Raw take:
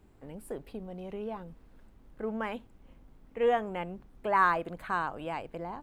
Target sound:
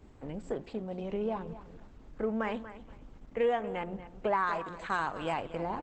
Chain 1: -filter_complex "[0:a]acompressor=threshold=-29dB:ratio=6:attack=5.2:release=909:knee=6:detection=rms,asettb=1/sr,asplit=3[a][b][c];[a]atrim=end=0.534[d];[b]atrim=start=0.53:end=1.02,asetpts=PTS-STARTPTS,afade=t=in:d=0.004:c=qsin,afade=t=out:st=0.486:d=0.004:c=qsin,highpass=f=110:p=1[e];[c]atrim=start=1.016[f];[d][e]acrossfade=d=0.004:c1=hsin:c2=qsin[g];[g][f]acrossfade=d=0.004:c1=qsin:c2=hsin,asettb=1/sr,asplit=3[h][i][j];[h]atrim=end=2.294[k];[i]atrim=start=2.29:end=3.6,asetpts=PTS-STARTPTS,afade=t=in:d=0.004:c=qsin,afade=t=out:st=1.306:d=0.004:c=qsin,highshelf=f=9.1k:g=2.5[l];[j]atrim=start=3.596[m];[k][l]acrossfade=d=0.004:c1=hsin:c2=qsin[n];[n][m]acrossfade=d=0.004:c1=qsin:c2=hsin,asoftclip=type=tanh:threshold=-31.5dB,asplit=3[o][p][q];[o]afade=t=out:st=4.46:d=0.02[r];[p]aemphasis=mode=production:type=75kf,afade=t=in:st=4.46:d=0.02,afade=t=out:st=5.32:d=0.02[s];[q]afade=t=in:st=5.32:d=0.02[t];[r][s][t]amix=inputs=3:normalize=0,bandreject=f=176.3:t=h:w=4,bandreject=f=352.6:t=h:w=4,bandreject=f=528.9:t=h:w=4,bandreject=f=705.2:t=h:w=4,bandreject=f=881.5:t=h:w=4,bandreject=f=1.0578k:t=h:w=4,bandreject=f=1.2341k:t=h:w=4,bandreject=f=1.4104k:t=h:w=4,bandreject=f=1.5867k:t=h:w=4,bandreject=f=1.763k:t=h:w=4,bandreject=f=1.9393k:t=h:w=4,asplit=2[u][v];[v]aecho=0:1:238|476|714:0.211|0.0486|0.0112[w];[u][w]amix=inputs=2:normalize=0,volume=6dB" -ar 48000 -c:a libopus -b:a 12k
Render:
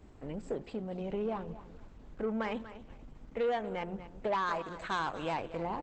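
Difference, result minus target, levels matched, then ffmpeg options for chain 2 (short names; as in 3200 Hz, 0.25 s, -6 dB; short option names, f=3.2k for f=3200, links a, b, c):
soft clip: distortion +19 dB
-filter_complex "[0:a]acompressor=threshold=-29dB:ratio=6:attack=5.2:release=909:knee=6:detection=rms,asettb=1/sr,asplit=3[a][b][c];[a]atrim=end=0.534[d];[b]atrim=start=0.53:end=1.02,asetpts=PTS-STARTPTS,afade=t=in:d=0.004:c=qsin,afade=t=out:st=0.486:d=0.004:c=qsin,highpass=f=110:p=1[e];[c]atrim=start=1.016[f];[d][e]acrossfade=d=0.004:c1=hsin:c2=qsin[g];[g][f]acrossfade=d=0.004:c1=qsin:c2=hsin,asettb=1/sr,asplit=3[h][i][j];[h]atrim=end=2.294[k];[i]atrim=start=2.29:end=3.6,asetpts=PTS-STARTPTS,afade=t=in:d=0.004:c=qsin,afade=t=out:st=1.306:d=0.004:c=qsin,highshelf=f=9.1k:g=2.5[l];[j]atrim=start=3.596[m];[k][l]acrossfade=d=0.004:c1=hsin:c2=qsin[n];[n][m]acrossfade=d=0.004:c1=qsin:c2=hsin,asoftclip=type=tanh:threshold=-19.5dB,asplit=3[o][p][q];[o]afade=t=out:st=4.46:d=0.02[r];[p]aemphasis=mode=production:type=75kf,afade=t=in:st=4.46:d=0.02,afade=t=out:st=5.32:d=0.02[s];[q]afade=t=in:st=5.32:d=0.02[t];[r][s][t]amix=inputs=3:normalize=0,bandreject=f=176.3:t=h:w=4,bandreject=f=352.6:t=h:w=4,bandreject=f=528.9:t=h:w=4,bandreject=f=705.2:t=h:w=4,bandreject=f=881.5:t=h:w=4,bandreject=f=1.0578k:t=h:w=4,bandreject=f=1.2341k:t=h:w=4,bandreject=f=1.4104k:t=h:w=4,bandreject=f=1.5867k:t=h:w=4,bandreject=f=1.763k:t=h:w=4,bandreject=f=1.9393k:t=h:w=4,asplit=2[u][v];[v]aecho=0:1:238|476|714:0.211|0.0486|0.0112[w];[u][w]amix=inputs=2:normalize=0,volume=6dB" -ar 48000 -c:a libopus -b:a 12k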